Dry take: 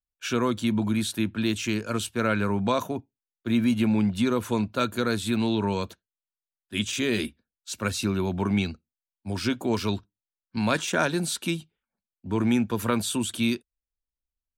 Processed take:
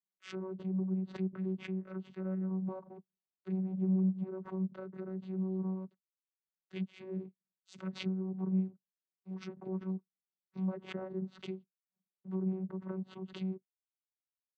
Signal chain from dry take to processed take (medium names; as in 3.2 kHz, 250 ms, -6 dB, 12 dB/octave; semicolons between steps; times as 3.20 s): power-law waveshaper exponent 1.4; low-pass that closes with the level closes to 770 Hz, closed at -26 dBFS; vocoder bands 16, saw 188 Hz; swell ahead of each attack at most 150 dB/s; trim -5.5 dB